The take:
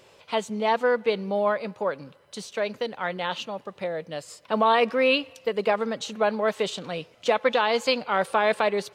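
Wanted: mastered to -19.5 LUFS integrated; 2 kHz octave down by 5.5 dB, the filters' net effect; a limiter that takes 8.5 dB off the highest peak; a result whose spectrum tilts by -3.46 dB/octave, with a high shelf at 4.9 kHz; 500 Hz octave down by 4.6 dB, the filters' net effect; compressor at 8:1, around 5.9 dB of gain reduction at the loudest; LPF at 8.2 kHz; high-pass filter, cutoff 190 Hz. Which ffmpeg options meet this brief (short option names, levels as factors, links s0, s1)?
-af "highpass=190,lowpass=8200,equalizer=f=500:t=o:g=-5,equalizer=f=2000:t=o:g=-8,highshelf=f=4900:g=4.5,acompressor=threshold=0.0501:ratio=8,volume=6.68,alimiter=limit=0.398:level=0:latency=1"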